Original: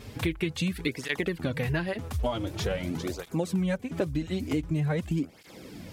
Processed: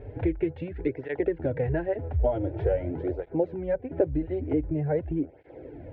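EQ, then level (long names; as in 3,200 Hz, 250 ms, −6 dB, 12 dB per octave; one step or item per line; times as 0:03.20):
low-pass filter 1,500 Hz 24 dB per octave
phaser with its sweep stopped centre 480 Hz, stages 4
+6.5 dB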